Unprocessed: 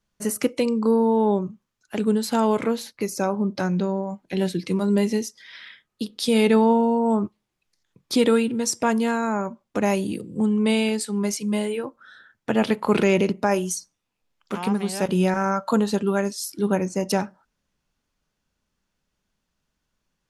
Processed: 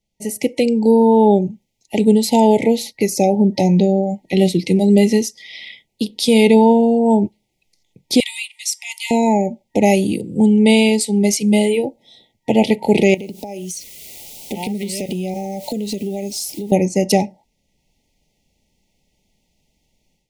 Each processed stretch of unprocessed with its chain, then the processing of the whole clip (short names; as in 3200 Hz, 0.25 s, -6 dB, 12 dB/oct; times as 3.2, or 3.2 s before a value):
8.2–9.11 steep high-pass 1200 Hz 48 dB/oct + dynamic EQ 6800 Hz, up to -6 dB, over -36 dBFS, Q 1
13.14–16.72 requantised 8-bit, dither triangular + LFO notch sine 1 Hz 760–1800 Hz + compressor 12:1, threshold -31 dBFS
whole clip: FFT band-reject 920–1900 Hz; AGC gain up to 11.5 dB